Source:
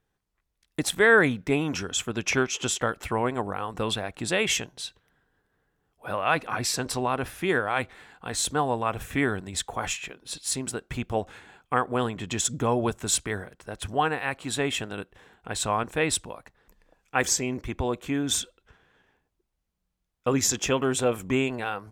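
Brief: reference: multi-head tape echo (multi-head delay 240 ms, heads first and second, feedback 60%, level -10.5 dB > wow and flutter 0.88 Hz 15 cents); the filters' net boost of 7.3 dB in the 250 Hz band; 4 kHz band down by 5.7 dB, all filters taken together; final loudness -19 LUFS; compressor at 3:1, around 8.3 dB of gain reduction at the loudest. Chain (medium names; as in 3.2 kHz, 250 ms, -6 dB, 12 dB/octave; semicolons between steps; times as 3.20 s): peaking EQ 250 Hz +8.5 dB; peaking EQ 4 kHz -7.5 dB; compression 3:1, threshold -25 dBFS; multi-head delay 240 ms, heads first and second, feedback 60%, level -10.5 dB; wow and flutter 0.88 Hz 15 cents; trim +10 dB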